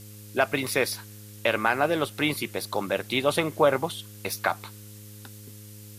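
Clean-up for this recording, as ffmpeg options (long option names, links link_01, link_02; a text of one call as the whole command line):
ffmpeg -i in.wav -af "bandreject=frequency=104.6:width_type=h:width=4,bandreject=frequency=209.2:width_type=h:width=4,bandreject=frequency=313.8:width_type=h:width=4,bandreject=frequency=418.4:width_type=h:width=4,bandreject=frequency=523:width_type=h:width=4,afftdn=noise_reduction=26:noise_floor=-45" out.wav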